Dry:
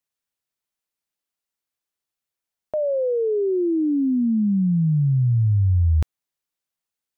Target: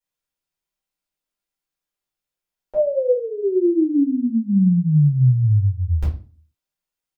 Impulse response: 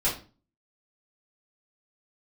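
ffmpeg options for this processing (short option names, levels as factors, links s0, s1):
-filter_complex "[0:a]asplit=3[s0][s1][s2];[s0]afade=t=out:st=3.1:d=0.02[s3];[s1]aecho=1:1:3.4:0.55,afade=t=in:st=3.1:d=0.02,afade=t=out:st=3.67:d=0.02[s4];[s2]afade=t=in:st=3.67:d=0.02[s5];[s3][s4][s5]amix=inputs=3:normalize=0[s6];[1:a]atrim=start_sample=2205[s7];[s6][s7]afir=irnorm=-1:irlink=0,volume=0.355"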